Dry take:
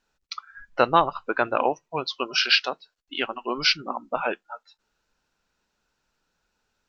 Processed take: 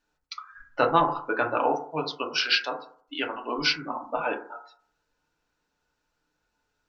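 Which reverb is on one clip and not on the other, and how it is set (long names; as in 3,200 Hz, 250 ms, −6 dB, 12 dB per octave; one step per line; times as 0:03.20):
feedback delay network reverb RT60 0.52 s, low-frequency decay 0.9×, high-frequency decay 0.25×, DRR 1 dB
level −4.5 dB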